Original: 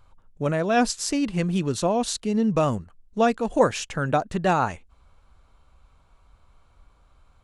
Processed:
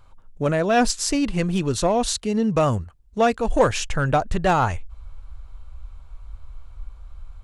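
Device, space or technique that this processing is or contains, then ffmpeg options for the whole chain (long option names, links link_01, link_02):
parallel distortion: -filter_complex "[0:a]asettb=1/sr,asplit=3[link_01][link_02][link_03];[link_01]atrim=end=2.124[link_04];[link_02]atrim=start=2.12:end=3.38,asetpts=PTS-STARTPTS,afade=type=in:duration=0.004:curve=qsin,afade=type=out:start_time=1.256:duration=0.004:curve=qsin,highpass=56[link_05];[link_03]atrim=start=3.376[link_06];[link_04][link_05]acrossfade=duration=0.004:curve1=hsin:curve2=qsin[link_07];[link_07][link_06]acrossfade=duration=0.004:curve1=qsin:curve2=hsin,asubboost=boost=8:cutoff=75,asplit=2[link_08][link_09];[link_09]asoftclip=type=hard:threshold=-19.5dB,volume=-5dB[link_10];[link_08][link_10]amix=inputs=2:normalize=0"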